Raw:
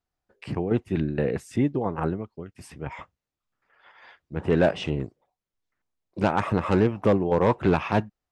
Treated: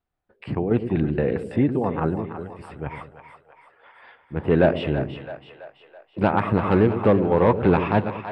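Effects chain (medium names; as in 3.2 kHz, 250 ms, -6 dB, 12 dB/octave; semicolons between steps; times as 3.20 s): boxcar filter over 7 samples; on a send: two-band feedback delay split 550 Hz, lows 106 ms, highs 330 ms, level -9.5 dB; on the sum: trim +3 dB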